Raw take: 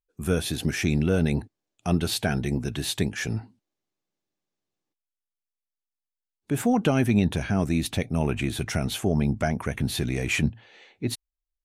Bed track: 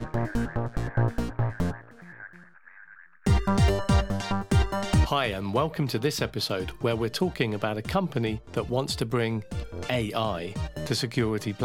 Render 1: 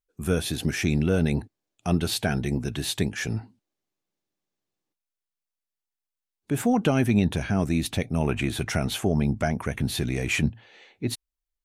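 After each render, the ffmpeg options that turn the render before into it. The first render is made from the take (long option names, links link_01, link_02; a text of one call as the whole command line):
ffmpeg -i in.wav -filter_complex "[0:a]asettb=1/sr,asplit=3[link_01][link_02][link_03];[link_01]atrim=end=8.274[link_04];[link_02]atrim=start=8.27:end=9.07,asetpts=PTS-STARTPTS,afade=type=in:duration=0.004:curve=qsin,afade=type=out:start_time=0.796:duration=0.004:curve=qsin,equalizer=frequency=1100:width=0.48:gain=3[link_05];[link_03]atrim=start=9.066[link_06];[link_04][link_05]acrossfade=duration=0.004:curve1=hsin:curve2=qsin[link_07];[link_07][link_06]acrossfade=duration=0.004:curve1=qsin:curve2=hsin" out.wav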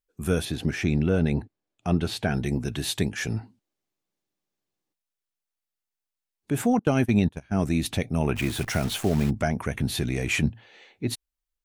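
ffmpeg -i in.wav -filter_complex "[0:a]asettb=1/sr,asplit=3[link_01][link_02][link_03];[link_01]atrim=end=0.454[link_04];[link_02]atrim=start=0.45:end=2.34,asetpts=PTS-STARTPTS,afade=type=in:duration=0.004:curve=qsin,afade=type=out:start_time=1.886:duration=0.004:curve=qsin,lowpass=frequency=2900:poles=1[link_05];[link_03]atrim=start=2.336[link_06];[link_04][link_05]acrossfade=duration=0.004:curve1=hsin:curve2=qsin[link_07];[link_07][link_06]acrossfade=duration=0.004:curve1=qsin:curve2=hsin,asettb=1/sr,asplit=3[link_08][link_09][link_10];[link_08]atrim=end=6.794[link_11];[link_09]atrim=start=6.79:end=7.54,asetpts=PTS-STARTPTS,afade=type=in:duration=0.004:curve=qsin,afade=type=out:start_time=0.746:duration=0.004:curve=qsin,agate=range=-25dB:threshold=-24dB:ratio=16:release=100:detection=peak[link_12];[link_10]atrim=start=7.536[link_13];[link_11][link_12]acrossfade=duration=0.004:curve1=hsin:curve2=qsin[link_14];[link_14][link_13]acrossfade=duration=0.004:curve1=qsin:curve2=hsin,asplit=3[link_15][link_16][link_17];[link_15]afade=type=out:start_time=8.35:duration=0.02[link_18];[link_16]acrusher=bits=7:dc=4:mix=0:aa=0.000001,afade=type=in:start_time=8.35:duration=0.02,afade=type=out:start_time=9.29:duration=0.02[link_19];[link_17]afade=type=in:start_time=9.29:duration=0.02[link_20];[link_18][link_19][link_20]amix=inputs=3:normalize=0" out.wav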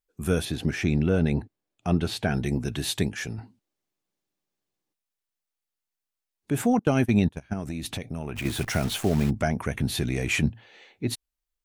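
ffmpeg -i in.wav -filter_complex "[0:a]asettb=1/sr,asplit=3[link_01][link_02][link_03];[link_01]atrim=end=7.534[link_04];[link_02]atrim=start=7.53:end=8.45,asetpts=PTS-STARTPTS,afade=type=in:duration=0.004:curve=qsin,afade=type=out:start_time=0.916:duration=0.004:curve=qsin,acompressor=threshold=-28dB:ratio=6:attack=3.2:release=140:knee=1:detection=peak[link_05];[link_03]atrim=start=8.446[link_06];[link_04][link_05]acrossfade=duration=0.004:curve1=hsin:curve2=qsin[link_07];[link_07][link_06]acrossfade=duration=0.004:curve1=qsin:curve2=hsin,asplit=2[link_08][link_09];[link_08]atrim=end=3.38,asetpts=PTS-STARTPTS,afade=type=out:start_time=2.97:duration=0.41:curve=qsin:silence=0.354813[link_10];[link_09]atrim=start=3.38,asetpts=PTS-STARTPTS,afade=type=in:duration=0.004:curve=hsin:silence=0.354813[link_11];[link_10][link_11]concat=n=2:v=0:a=1" out.wav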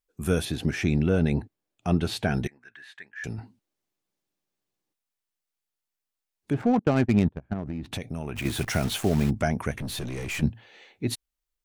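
ffmpeg -i in.wav -filter_complex "[0:a]asettb=1/sr,asplit=3[link_01][link_02][link_03];[link_01]atrim=end=2.474[link_04];[link_02]atrim=start=2.47:end=3.24,asetpts=PTS-STARTPTS,afade=type=in:duration=0.004:curve=qsin,afade=type=out:start_time=0.766:duration=0.004:curve=qsin,bandpass=frequency=1700:width_type=q:width=6.7[link_05];[link_03]atrim=start=3.236[link_06];[link_04][link_05]acrossfade=duration=0.004:curve1=hsin:curve2=qsin[link_07];[link_07][link_06]acrossfade=duration=0.004:curve1=qsin:curve2=hsin,asettb=1/sr,asplit=3[link_08][link_09][link_10];[link_08]atrim=end=6.534[link_11];[link_09]atrim=start=6.53:end=7.92,asetpts=PTS-STARTPTS,afade=type=in:duration=0.004:curve=qsin,afade=type=out:start_time=1.386:duration=0.004:curve=qsin,adynamicsmooth=sensitivity=3:basefreq=750[link_12];[link_10]atrim=start=7.916[link_13];[link_11][link_12]acrossfade=duration=0.004:curve1=hsin:curve2=qsin[link_14];[link_14][link_13]acrossfade=duration=0.004:curve1=qsin:curve2=hsin,asettb=1/sr,asplit=3[link_15][link_16][link_17];[link_15]atrim=end=9.714[link_18];[link_16]atrim=start=9.71:end=10.42,asetpts=PTS-STARTPTS,afade=type=in:duration=0.004:curve=qsin,afade=type=out:start_time=0.706:duration=0.004:curve=qsin,aeval=exprs='(tanh(28.2*val(0)+0.3)-tanh(0.3))/28.2':channel_layout=same[link_19];[link_17]atrim=start=10.416[link_20];[link_18][link_19]acrossfade=duration=0.004:curve1=hsin:curve2=qsin[link_21];[link_21][link_20]acrossfade=duration=0.004:curve1=qsin:curve2=hsin" out.wav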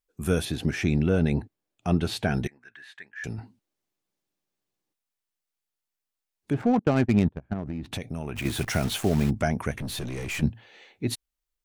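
ffmpeg -i in.wav -af anull out.wav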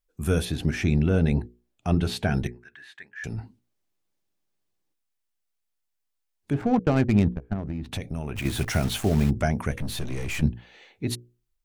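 ffmpeg -i in.wav -af "lowshelf=frequency=73:gain=11,bandreject=frequency=60:width_type=h:width=6,bandreject=frequency=120:width_type=h:width=6,bandreject=frequency=180:width_type=h:width=6,bandreject=frequency=240:width_type=h:width=6,bandreject=frequency=300:width_type=h:width=6,bandreject=frequency=360:width_type=h:width=6,bandreject=frequency=420:width_type=h:width=6,bandreject=frequency=480:width_type=h:width=6,bandreject=frequency=540:width_type=h:width=6" out.wav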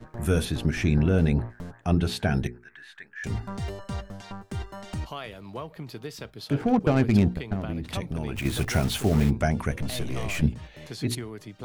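ffmpeg -i in.wav -i bed.wav -filter_complex "[1:a]volume=-11.5dB[link_01];[0:a][link_01]amix=inputs=2:normalize=0" out.wav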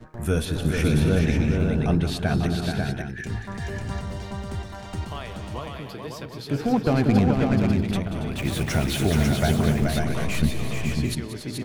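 ffmpeg -i in.wav -af "aecho=1:1:183|279|428|545|637|741:0.251|0.224|0.562|0.631|0.224|0.335" out.wav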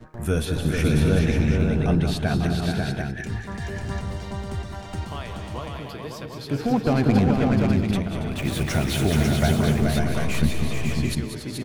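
ffmpeg -i in.wav -af "aecho=1:1:168|196:0.141|0.299" out.wav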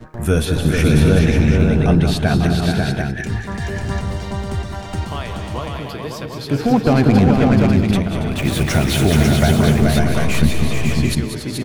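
ffmpeg -i in.wav -af "volume=7dB,alimiter=limit=-3dB:level=0:latency=1" out.wav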